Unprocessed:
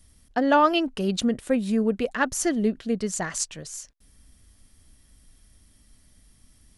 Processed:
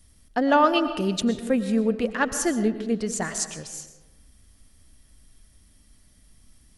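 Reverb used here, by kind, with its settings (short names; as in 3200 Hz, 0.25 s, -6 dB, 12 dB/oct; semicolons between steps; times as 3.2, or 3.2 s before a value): digital reverb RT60 1.2 s, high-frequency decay 0.45×, pre-delay 75 ms, DRR 10 dB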